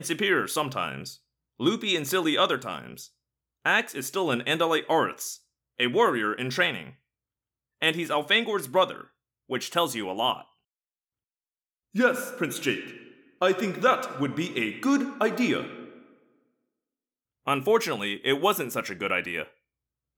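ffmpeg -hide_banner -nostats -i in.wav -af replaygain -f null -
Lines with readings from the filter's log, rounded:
track_gain = +5.2 dB
track_peak = 0.262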